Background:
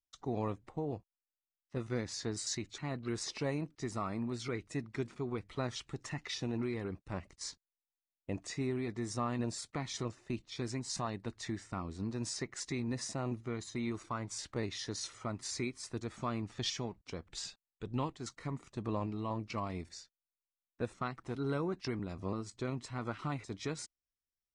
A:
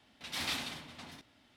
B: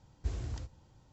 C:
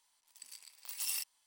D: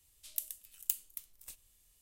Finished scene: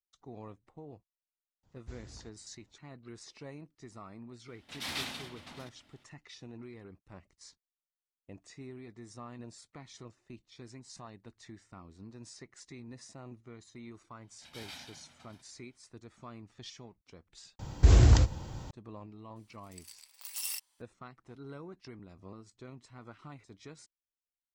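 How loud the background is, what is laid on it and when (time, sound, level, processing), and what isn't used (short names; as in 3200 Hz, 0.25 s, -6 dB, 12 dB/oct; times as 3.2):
background -11 dB
1.63 add B -5 dB + harmonic-percussive split harmonic -11 dB
4.48 add A -1 dB
14.21 add A -12.5 dB + comb 1.3 ms, depth 56%
17.59 replace with B -9 dB + maximiser +28 dB
19.36 add C -0.5 dB
not used: D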